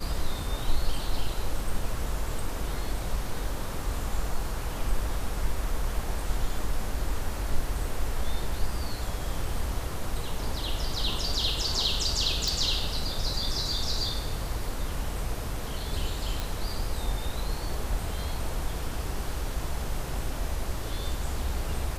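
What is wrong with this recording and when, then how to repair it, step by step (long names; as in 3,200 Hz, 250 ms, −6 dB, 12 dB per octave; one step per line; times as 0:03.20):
0:12.48: click
0:16.40: click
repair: click removal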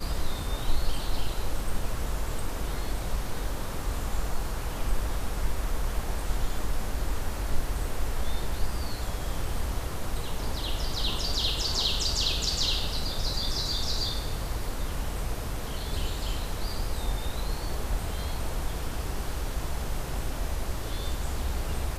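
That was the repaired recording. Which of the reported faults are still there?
none of them is left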